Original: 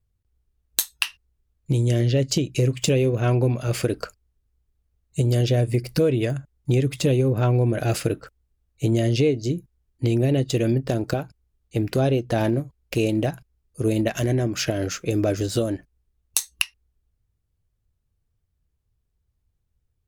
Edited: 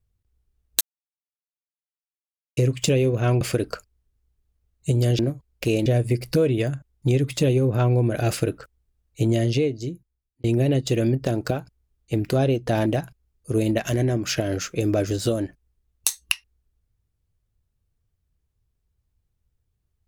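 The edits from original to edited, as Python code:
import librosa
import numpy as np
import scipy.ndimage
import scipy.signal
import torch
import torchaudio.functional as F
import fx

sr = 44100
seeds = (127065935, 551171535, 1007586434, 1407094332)

y = fx.edit(x, sr, fx.silence(start_s=0.81, length_s=1.76),
    fx.cut(start_s=3.41, length_s=0.3),
    fx.fade_out_span(start_s=9.0, length_s=1.07),
    fx.move(start_s=12.49, length_s=0.67, to_s=5.49), tone=tone)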